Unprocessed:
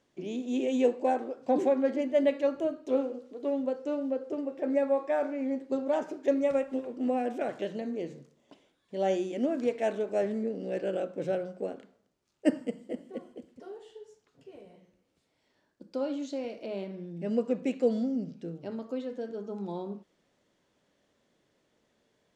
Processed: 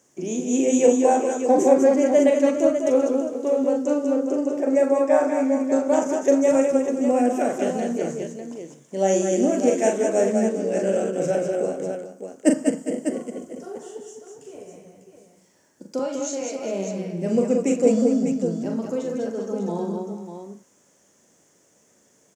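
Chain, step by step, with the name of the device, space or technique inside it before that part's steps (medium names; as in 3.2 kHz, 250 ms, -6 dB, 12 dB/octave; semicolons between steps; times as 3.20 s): 15.99–16.60 s: frequency weighting A; budget condenser microphone (high-pass 100 Hz; resonant high shelf 5.1 kHz +9 dB, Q 3); multi-tap echo 41/192/203/407/599 ms -5/-9/-5.5/-13.5/-8 dB; trim +7 dB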